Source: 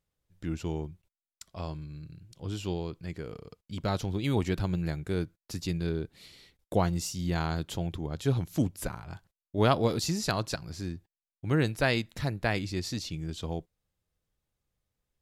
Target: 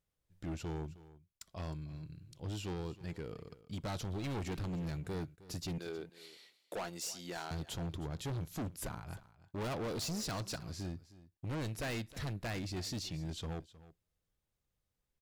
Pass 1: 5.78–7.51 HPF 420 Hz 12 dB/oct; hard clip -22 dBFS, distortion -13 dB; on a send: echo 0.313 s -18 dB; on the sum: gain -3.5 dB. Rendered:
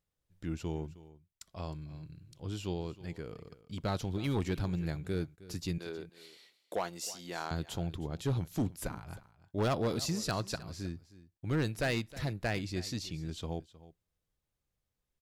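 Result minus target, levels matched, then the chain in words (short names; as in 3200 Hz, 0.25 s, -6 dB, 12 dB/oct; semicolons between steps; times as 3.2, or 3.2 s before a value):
hard clip: distortion -8 dB
5.78–7.51 HPF 420 Hz 12 dB/oct; hard clip -32.5 dBFS, distortion -4 dB; on a send: echo 0.313 s -18 dB; on the sum: gain -3.5 dB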